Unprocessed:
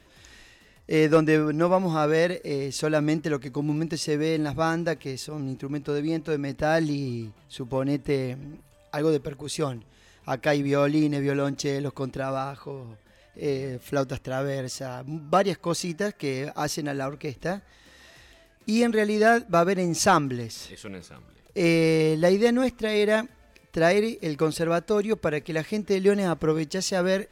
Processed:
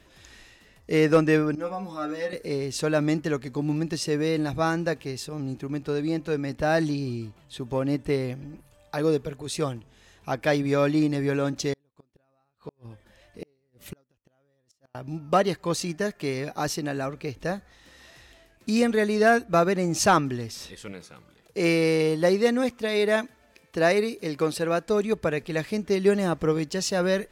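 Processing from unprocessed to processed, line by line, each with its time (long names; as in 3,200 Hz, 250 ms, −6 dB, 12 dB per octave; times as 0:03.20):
0:01.55–0:02.33: stiff-string resonator 100 Hz, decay 0.27 s, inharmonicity 0.002
0:11.73–0:14.95: gate with flip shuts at −25 dBFS, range −41 dB
0:20.92–0:24.86: high-pass filter 180 Hz 6 dB per octave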